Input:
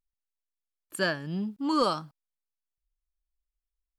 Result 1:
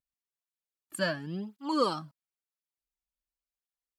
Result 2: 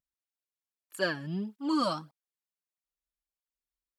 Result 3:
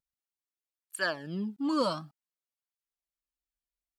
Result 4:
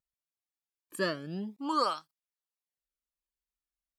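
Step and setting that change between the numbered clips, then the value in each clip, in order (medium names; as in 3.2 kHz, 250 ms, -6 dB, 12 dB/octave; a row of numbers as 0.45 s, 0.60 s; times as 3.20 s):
cancelling through-zero flanger, nulls at: 0.95 Hz, 1.6 Hz, 0.54 Hz, 0.24 Hz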